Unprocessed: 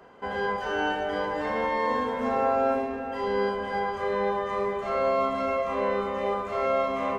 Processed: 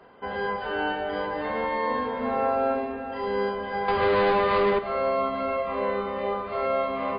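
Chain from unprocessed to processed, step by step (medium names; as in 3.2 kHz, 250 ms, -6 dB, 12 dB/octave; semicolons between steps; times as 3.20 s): 3.88–4.79 s: waveshaping leveller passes 3; MP3 24 kbps 11.025 kHz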